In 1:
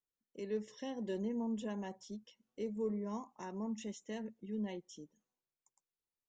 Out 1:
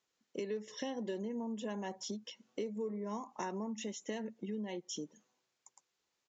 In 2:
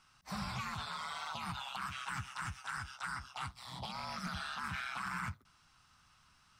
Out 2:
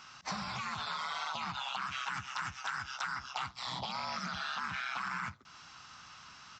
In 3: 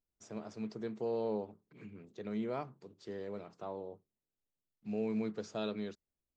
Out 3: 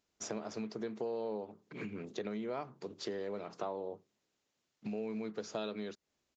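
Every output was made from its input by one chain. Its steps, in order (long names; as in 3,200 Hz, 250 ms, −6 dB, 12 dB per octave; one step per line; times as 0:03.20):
downward compressor 6 to 1, threshold −50 dBFS
downsampling to 16,000 Hz
high-pass filter 260 Hz 6 dB per octave
level +15 dB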